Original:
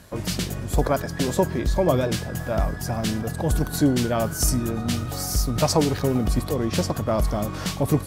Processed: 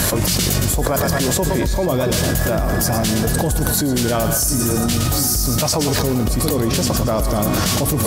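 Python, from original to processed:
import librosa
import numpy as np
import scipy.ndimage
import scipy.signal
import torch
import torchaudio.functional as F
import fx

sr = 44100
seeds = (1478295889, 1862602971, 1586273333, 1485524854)

p1 = fx.high_shelf(x, sr, hz=5400.0, db=10.0)
p2 = p1 + fx.echo_split(p1, sr, split_hz=440.0, low_ms=676, high_ms=114, feedback_pct=52, wet_db=-9.5, dry=0)
p3 = fx.env_flatten(p2, sr, amount_pct=100)
y = F.gain(torch.from_numpy(p3), -3.5).numpy()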